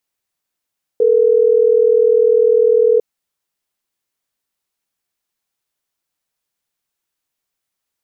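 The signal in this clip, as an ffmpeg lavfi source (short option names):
-f lavfi -i "aevalsrc='0.266*(sin(2*PI*440*t)+sin(2*PI*480*t))*clip(min(mod(t,6),2-mod(t,6))/0.005,0,1)':d=3.12:s=44100"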